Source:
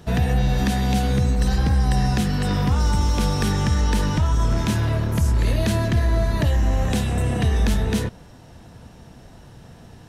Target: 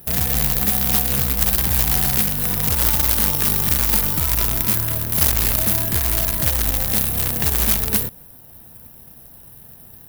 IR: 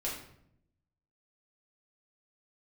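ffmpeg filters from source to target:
-af "acrusher=bits=3:mode=log:mix=0:aa=0.000001,aexciter=amount=11.7:drive=8.2:freq=10000,aeval=exprs='1.12*(cos(1*acos(clip(val(0)/1.12,-1,1)))-cos(1*PI/2))+0.501*(cos(4*acos(clip(val(0)/1.12,-1,1)))-cos(4*PI/2))+0.316*(cos(6*acos(clip(val(0)/1.12,-1,1)))-cos(6*PI/2))':c=same,volume=0.501"

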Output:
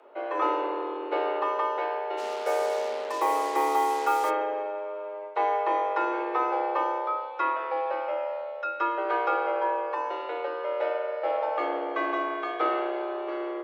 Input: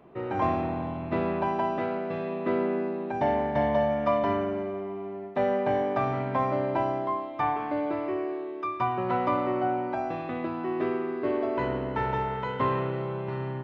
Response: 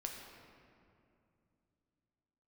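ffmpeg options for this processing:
-filter_complex "[0:a]asplit=3[s0][s1][s2];[s0]afade=t=out:st=2.17:d=0.02[s3];[s1]acrusher=bits=5:mix=0:aa=0.5,afade=t=in:st=2.17:d=0.02,afade=t=out:st=4.29:d=0.02[s4];[s2]afade=t=in:st=4.29:d=0.02[s5];[s3][s4][s5]amix=inputs=3:normalize=0,afreqshift=220"

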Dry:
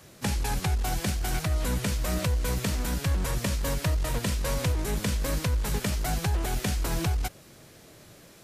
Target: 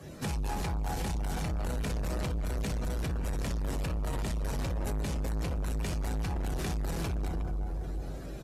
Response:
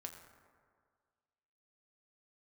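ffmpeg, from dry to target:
-filter_complex "[0:a]asplit=2[s0][s1];[s1]acrusher=samples=37:mix=1:aa=0.000001,volume=0.447[s2];[s0][s2]amix=inputs=2:normalize=0,alimiter=limit=0.0794:level=0:latency=1:release=14[s3];[1:a]atrim=start_sample=2205,afade=t=out:st=0.35:d=0.01,atrim=end_sample=15876,asetrate=26901,aresample=44100[s4];[s3][s4]afir=irnorm=-1:irlink=0,acontrast=29,asplit=2[s5][s6];[s6]adelay=365,lowpass=f=1800:p=1,volume=0.447,asplit=2[s7][s8];[s8]adelay=365,lowpass=f=1800:p=1,volume=0.31,asplit=2[s9][s10];[s10]adelay=365,lowpass=f=1800:p=1,volume=0.31,asplit=2[s11][s12];[s12]adelay=365,lowpass=f=1800:p=1,volume=0.31[s13];[s5][s7][s9][s11][s13]amix=inputs=5:normalize=0,asoftclip=type=tanh:threshold=0.0398,acompressor=threshold=0.0224:ratio=6,afftdn=nr=12:nf=-53,volume=1.33"

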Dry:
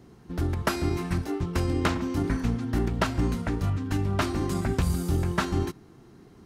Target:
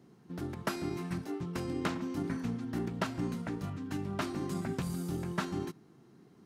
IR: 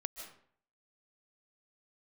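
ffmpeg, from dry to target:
-af "lowshelf=f=100:t=q:w=1.5:g=-13.5,volume=0.376"

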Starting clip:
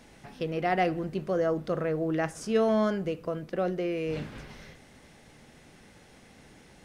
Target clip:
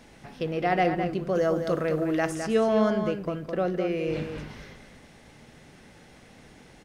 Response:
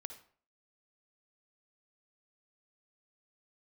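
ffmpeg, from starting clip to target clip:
-filter_complex "[0:a]asettb=1/sr,asplit=3[s0][s1][s2];[s0]atrim=end=1.354[s3];[s1]atrim=start=1.35:end=2.35,asetpts=PTS-STARTPTS,afade=t=in:d=0.004:c=qsin,afade=t=out:st=0.996:d=0.004:c=qsin,highshelf=f=4200:g=10.5[s4];[s2]atrim=start=2.346[s5];[s3][s4]acrossfade=d=0.004:c1=hsin:c2=qsin[s6];[s6][s5]acrossfade=d=0.004:c1=qsin:c2=hsin,asplit=2[s7][s8];[s8]adelay=209.9,volume=0.447,highshelf=f=4000:g=-4.72[s9];[s7][s9]amix=inputs=2:normalize=0,asplit=2[s10][s11];[1:a]atrim=start_sample=2205,lowpass=7600[s12];[s11][s12]afir=irnorm=-1:irlink=0,volume=0.447[s13];[s10][s13]amix=inputs=2:normalize=0"

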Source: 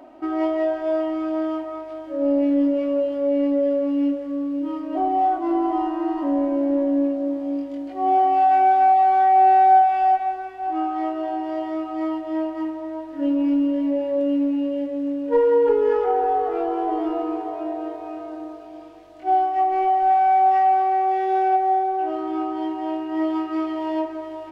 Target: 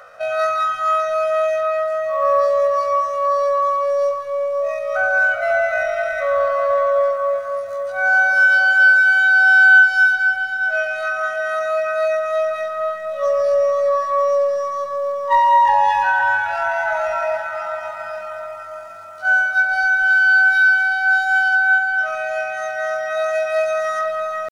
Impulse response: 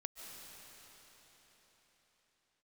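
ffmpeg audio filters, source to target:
-filter_complex "[0:a]highshelf=f=2300:g=10,asetrate=88200,aresample=44100,atempo=0.5,asplit=2[s0][s1];[1:a]atrim=start_sample=2205,lowpass=2400[s2];[s1][s2]afir=irnorm=-1:irlink=0,volume=1.19[s3];[s0][s3]amix=inputs=2:normalize=0,volume=0.841"

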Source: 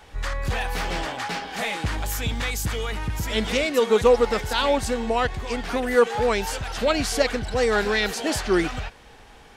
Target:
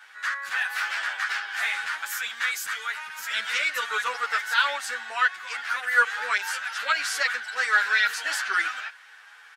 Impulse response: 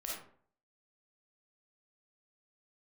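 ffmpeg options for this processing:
-filter_complex "[0:a]highpass=f=1500:t=q:w=4,asplit=2[s0][s1];[s1]adelay=9.8,afreqshift=0.81[s2];[s0][s2]amix=inputs=2:normalize=1"

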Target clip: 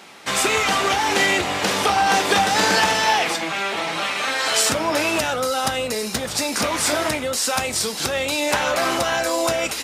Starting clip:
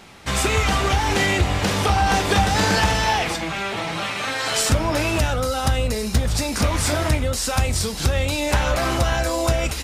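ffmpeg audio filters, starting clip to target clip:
-af "highpass=240,lowshelf=f=500:g=-3,volume=1.41"

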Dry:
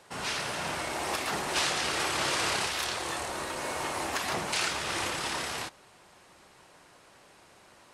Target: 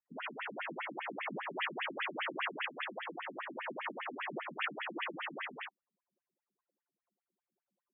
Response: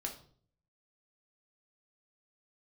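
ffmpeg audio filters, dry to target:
-af "anlmdn=0.158,afftfilt=real='re*between(b*sr/1024,200*pow(2500/200,0.5+0.5*sin(2*PI*5*pts/sr))/1.41,200*pow(2500/200,0.5+0.5*sin(2*PI*5*pts/sr))*1.41)':imag='im*between(b*sr/1024,200*pow(2500/200,0.5+0.5*sin(2*PI*5*pts/sr))/1.41,200*pow(2500/200,0.5+0.5*sin(2*PI*5*pts/sr))*1.41)':win_size=1024:overlap=0.75"

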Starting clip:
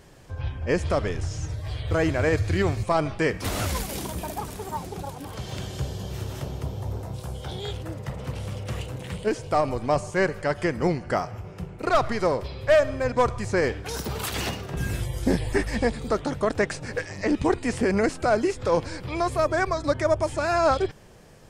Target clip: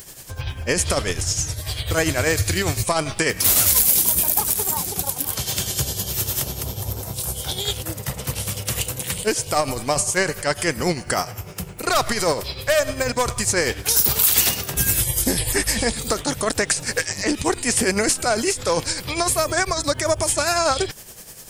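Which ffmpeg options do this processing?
-af "tremolo=f=10:d=0.61,crystalizer=i=6:c=0,alimiter=limit=0.2:level=0:latency=1:release=57,highshelf=f=11000:g=11,volume=1.68"

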